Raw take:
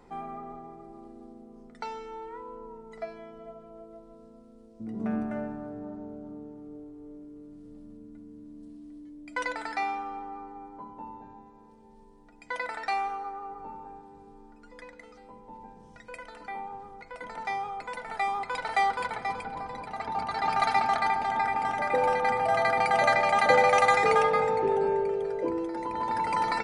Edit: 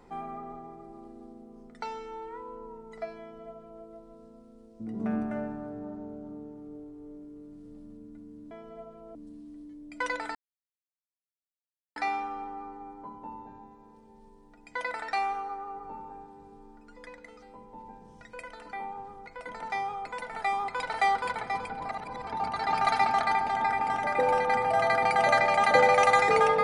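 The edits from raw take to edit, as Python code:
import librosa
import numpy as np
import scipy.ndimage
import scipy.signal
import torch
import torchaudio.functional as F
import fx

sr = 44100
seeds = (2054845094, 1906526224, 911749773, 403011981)

y = fx.edit(x, sr, fx.duplicate(start_s=3.2, length_s=0.64, to_s=8.51),
    fx.insert_silence(at_s=9.71, length_s=1.61),
    fx.reverse_span(start_s=19.64, length_s=0.38), tone=tone)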